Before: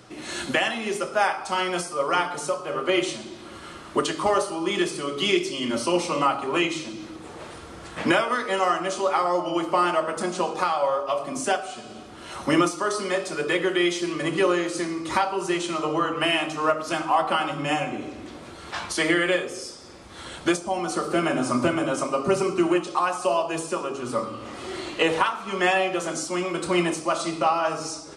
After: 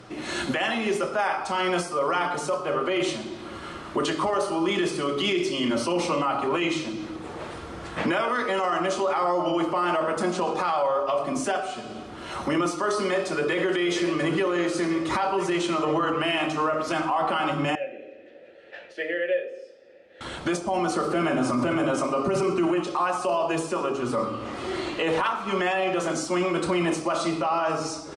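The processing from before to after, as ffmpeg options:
-filter_complex "[0:a]asplit=2[a][b];[b]afade=t=in:st=13.03:d=0.01,afade=t=out:st=13.62:d=0.01,aecho=0:1:470|940|1410|1880|2350|2820|3290|3760|4230|4700|5170:0.223872|0.167904|0.125928|0.094446|0.0708345|0.0531259|0.0398444|0.0298833|0.0224125|0.0168094|0.012607[c];[a][c]amix=inputs=2:normalize=0,asettb=1/sr,asplit=3[d][e][f];[d]atrim=end=17.754[g];[e]atrim=start=17.75:end=20.21,asetpts=PTS-STARTPTS,afade=t=in:d=0.004:c=qsin,afade=t=out:st=2.456:d=0.004:c=qsin,asplit=3[h][i][j];[h]bandpass=f=530:t=q:w=8,volume=0dB[k];[i]bandpass=f=1.84k:t=q:w=8,volume=-6dB[l];[j]bandpass=f=2.48k:t=q:w=8,volume=-9dB[m];[k][l][m]amix=inputs=3:normalize=0[n];[f]atrim=start=20.206[o];[g][n]acrossfade=d=0.004:c1=hsin:c2=qsin[p];[p][o]acrossfade=d=0.004:c1=qsin:c2=hsin,aemphasis=mode=reproduction:type=cd,alimiter=limit=-20dB:level=0:latency=1:release=16,volume=3.5dB"

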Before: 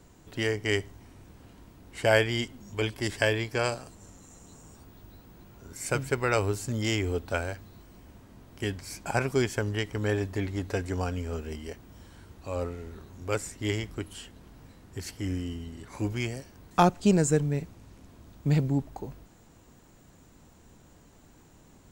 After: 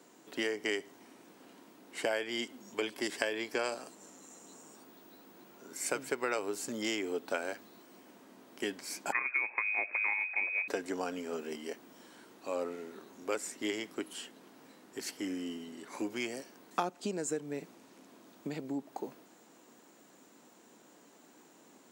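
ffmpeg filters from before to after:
-filter_complex "[0:a]asettb=1/sr,asplit=3[a][b][c];[a]atrim=end=9.124[d];[b]atrim=start=9.12:end=10.68,asetpts=PTS-STARTPTS,afade=t=in:d=0.004:c=qsin,afade=t=out:st=1.556:d=0.004:c=qsin,lowpass=f=2.2k:t=q:w=0.5098,lowpass=f=2.2k:t=q:w=0.6013,lowpass=f=2.2k:t=q:w=0.9,lowpass=f=2.2k:t=q:w=2.563,afreqshift=-2600[e];[c]atrim=start=10.676[f];[d][e]acrossfade=d=0.004:c1=hsin:c2=qsin[g];[g][f]acrossfade=d=0.004:c1=qsin:c2=hsin,acompressor=threshold=-28dB:ratio=16,highpass=f=240:w=0.5412,highpass=f=240:w=1.3066"

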